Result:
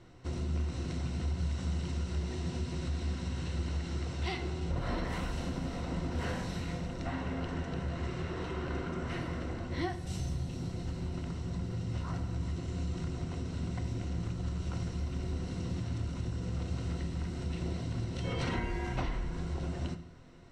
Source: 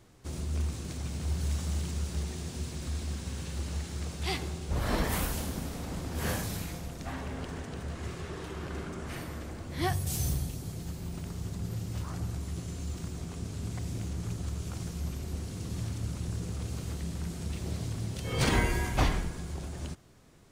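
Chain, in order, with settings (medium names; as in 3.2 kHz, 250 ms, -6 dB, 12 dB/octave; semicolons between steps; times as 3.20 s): rippled EQ curve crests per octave 2, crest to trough 7 dB; compression 5:1, threshold -34 dBFS, peak gain reduction 13.5 dB; distance through air 120 m; on a send: reverberation, pre-delay 3 ms, DRR 8 dB; on the sum: trim +2.5 dB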